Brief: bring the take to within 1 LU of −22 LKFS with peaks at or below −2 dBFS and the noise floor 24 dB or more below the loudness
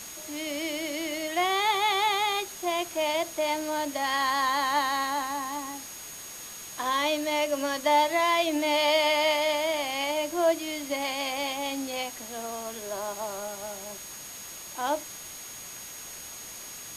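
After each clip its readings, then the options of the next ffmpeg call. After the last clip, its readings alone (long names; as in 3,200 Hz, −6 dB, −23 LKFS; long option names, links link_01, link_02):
interfering tone 6,600 Hz; level of the tone −43 dBFS; background noise floor −42 dBFS; target noise floor −52 dBFS; integrated loudness −27.5 LKFS; sample peak −12.5 dBFS; target loudness −22.0 LKFS
→ -af "bandreject=frequency=6600:width=30"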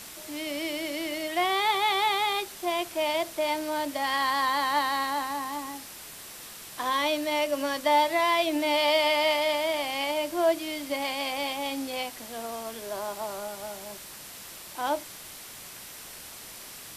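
interfering tone none found; background noise floor −44 dBFS; target noise floor −52 dBFS
→ -af "afftdn=noise_reduction=8:noise_floor=-44"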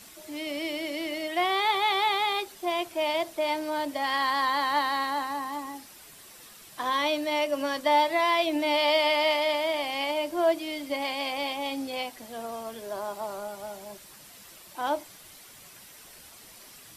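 background noise floor −50 dBFS; target noise floor −52 dBFS
→ -af "afftdn=noise_reduction=6:noise_floor=-50"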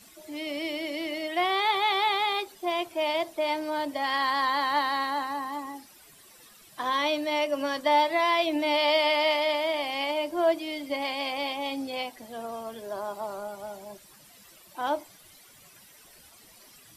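background noise floor −54 dBFS; integrated loudness −27.5 LKFS; sample peak −12.5 dBFS; target loudness −22.0 LKFS
→ -af "volume=5.5dB"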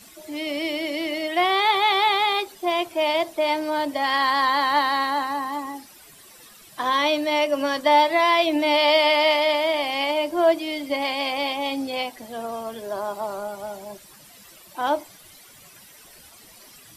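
integrated loudness −22.0 LKFS; sample peak −7.0 dBFS; background noise floor −49 dBFS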